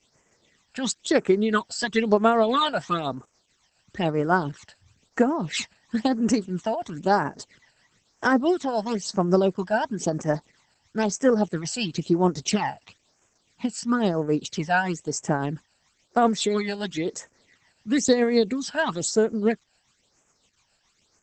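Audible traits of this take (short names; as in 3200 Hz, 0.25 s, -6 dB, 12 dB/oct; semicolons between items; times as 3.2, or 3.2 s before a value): a quantiser's noise floor 10-bit, dither triangular; tremolo triangle 7.2 Hz, depth 50%; phasing stages 12, 1 Hz, lowest notch 350–4100 Hz; Opus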